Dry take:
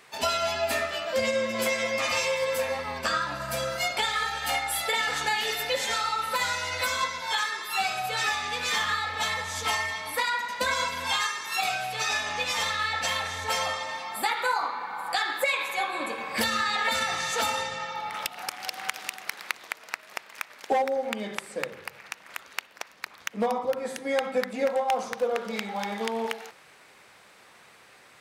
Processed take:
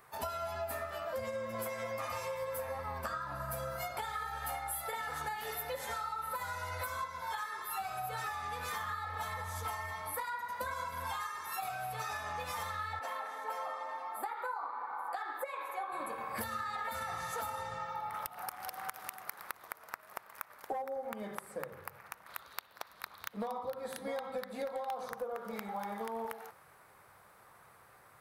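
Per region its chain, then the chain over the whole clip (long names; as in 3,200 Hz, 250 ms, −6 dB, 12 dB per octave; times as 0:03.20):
0:12.99–0:15.92: Butterworth high-pass 250 Hz + high-shelf EQ 3,100 Hz −10.5 dB
0:22.26–0:25.11: parametric band 3,900 Hz +13 dB 0.67 octaves + single-tap delay 655 ms −11 dB
whole clip: drawn EQ curve 110 Hz 0 dB, 250 Hz −12 dB, 1,200 Hz −4 dB, 2,700 Hz −19 dB, 7,200 Hz −16 dB, 12,000 Hz −1 dB; downward compressor, threshold −38 dBFS; level +2.5 dB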